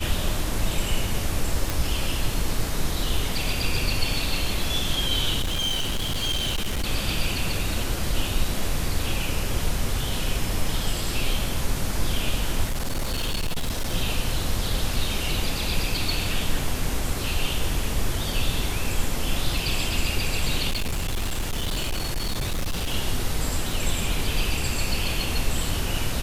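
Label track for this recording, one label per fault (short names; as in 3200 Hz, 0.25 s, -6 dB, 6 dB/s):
1.700000	1.700000	pop
5.410000	6.840000	clipped -21.5 dBFS
12.640000	13.950000	clipped -21.5 dBFS
20.700000	22.940000	clipped -22 dBFS
23.730000	23.730000	gap 2.4 ms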